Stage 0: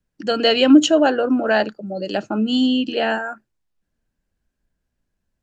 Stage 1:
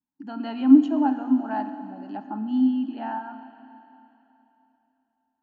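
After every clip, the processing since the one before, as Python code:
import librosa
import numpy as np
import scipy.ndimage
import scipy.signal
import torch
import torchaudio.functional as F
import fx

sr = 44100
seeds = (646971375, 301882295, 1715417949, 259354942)

y = fx.double_bandpass(x, sr, hz=490.0, octaves=1.7)
y = fx.rev_schroeder(y, sr, rt60_s=3.2, comb_ms=27, drr_db=9.5)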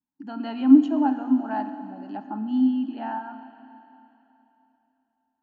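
y = x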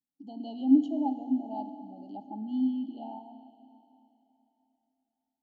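y = scipy.signal.sosfilt(scipy.signal.cheby1(5, 1.0, [840.0, 3000.0], 'bandstop', fs=sr, output='sos'), x)
y = y * 10.0 ** (-6.5 / 20.0)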